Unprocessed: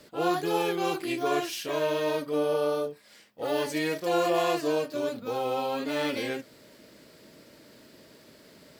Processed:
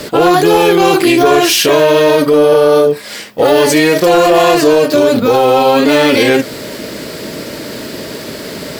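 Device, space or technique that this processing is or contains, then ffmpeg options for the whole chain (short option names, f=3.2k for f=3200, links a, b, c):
mastering chain: -af "equalizer=f=420:t=o:w=0.23:g=3,acompressor=threshold=-30dB:ratio=2,asoftclip=type=tanh:threshold=-21dB,asoftclip=type=hard:threshold=-24.5dB,alimiter=level_in=29.5dB:limit=-1dB:release=50:level=0:latency=1,volume=-1dB"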